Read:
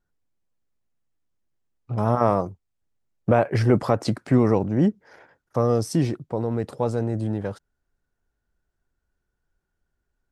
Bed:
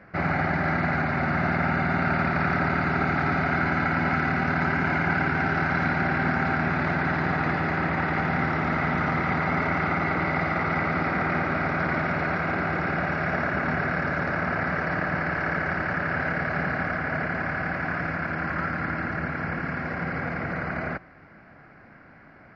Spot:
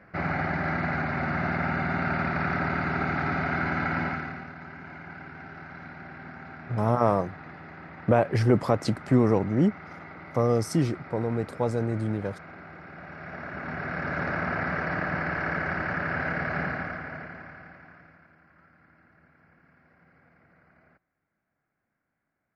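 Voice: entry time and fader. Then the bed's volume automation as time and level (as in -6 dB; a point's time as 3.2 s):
4.80 s, -2.5 dB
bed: 4.01 s -3.5 dB
4.54 s -18.5 dB
12.89 s -18.5 dB
14.22 s -2.5 dB
16.63 s -2.5 dB
18.43 s -31 dB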